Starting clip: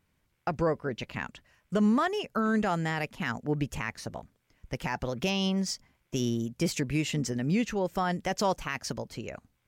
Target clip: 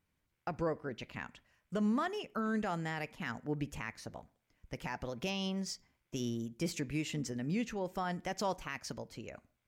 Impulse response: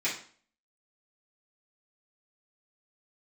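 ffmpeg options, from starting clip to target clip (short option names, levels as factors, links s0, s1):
-filter_complex "[0:a]asplit=2[s0][s1];[1:a]atrim=start_sample=2205,highshelf=f=3300:g=-12[s2];[s1][s2]afir=irnorm=-1:irlink=0,volume=0.0841[s3];[s0][s3]amix=inputs=2:normalize=0,volume=0.398"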